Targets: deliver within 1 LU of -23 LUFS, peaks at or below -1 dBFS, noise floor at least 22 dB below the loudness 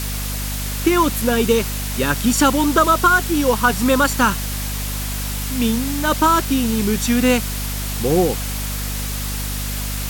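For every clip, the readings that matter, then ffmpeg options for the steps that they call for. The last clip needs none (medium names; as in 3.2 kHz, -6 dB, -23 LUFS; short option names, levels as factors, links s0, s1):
hum 50 Hz; highest harmonic 250 Hz; hum level -23 dBFS; noise floor -25 dBFS; noise floor target -41 dBFS; loudness -18.5 LUFS; peak level -2.5 dBFS; loudness target -23.0 LUFS
-> -af "bandreject=f=50:t=h:w=6,bandreject=f=100:t=h:w=6,bandreject=f=150:t=h:w=6,bandreject=f=200:t=h:w=6,bandreject=f=250:t=h:w=6"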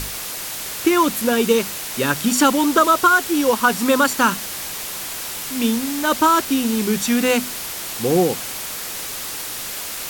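hum not found; noise floor -29 dBFS; noise floor target -41 dBFS
-> -af "afftdn=nr=12:nf=-29"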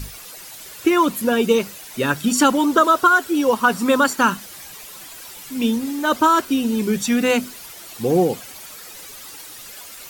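noise floor -39 dBFS; noise floor target -41 dBFS
-> -af "afftdn=nr=6:nf=-39"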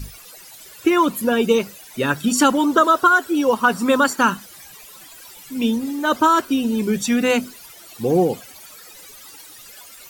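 noise floor -43 dBFS; loudness -18.5 LUFS; peak level -3.5 dBFS; loudness target -23.0 LUFS
-> -af "volume=0.596"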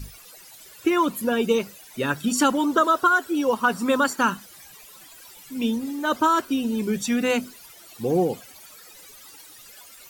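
loudness -23.0 LUFS; peak level -8.0 dBFS; noise floor -47 dBFS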